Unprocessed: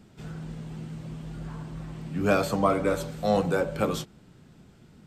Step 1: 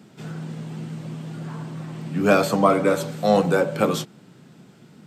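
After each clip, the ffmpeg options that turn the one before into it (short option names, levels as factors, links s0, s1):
-af "highpass=f=130:w=0.5412,highpass=f=130:w=1.3066,volume=2"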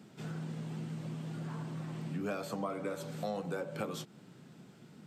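-af "acompressor=threshold=0.0355:ratio=5,volume=0.473"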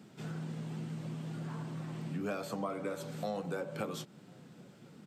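-filter_complex "[0:a]asplit=2[s0][s1];[s1]adelay=1050,volume=0.0447,highshelf=f=4000:g=-23.6[s2];[s0][s2]amix=inputs=2:normalize=0"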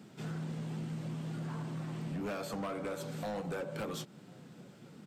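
-af "volume=59.6,asoftclip=hard,volume=0.0168,volume=1.19"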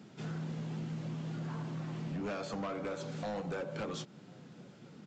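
-af "aresample=16000,aresample=44100"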